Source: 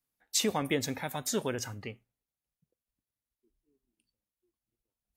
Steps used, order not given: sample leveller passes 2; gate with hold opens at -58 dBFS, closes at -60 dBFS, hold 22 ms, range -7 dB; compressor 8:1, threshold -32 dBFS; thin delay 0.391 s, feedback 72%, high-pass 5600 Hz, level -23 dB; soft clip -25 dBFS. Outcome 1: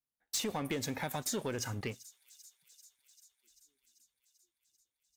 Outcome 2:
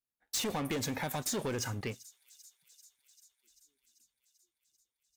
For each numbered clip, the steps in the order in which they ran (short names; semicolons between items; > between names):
sample leveller > gate with hold > thin delay > compressor > soft clip; gate with hold > sample leveller > thin delay > soft clip > compressor